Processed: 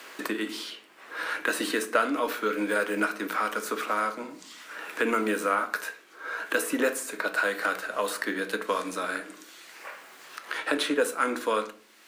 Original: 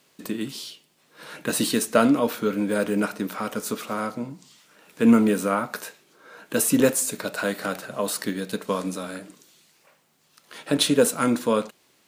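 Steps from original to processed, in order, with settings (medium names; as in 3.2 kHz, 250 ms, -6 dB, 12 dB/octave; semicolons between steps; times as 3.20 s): high-pass 280 Hz 24 dB/octave; peaking EQ 1.6 kHz +10 dB 1.5 oct; in parallel at -12 dB: crossover distortion -34.5 dBFS; on the sum: reverberation RT60 0.40 s, pre-delay 6 ms, DRR 9 dB; three bands compressed up and down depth 70%; trim -7.5 dB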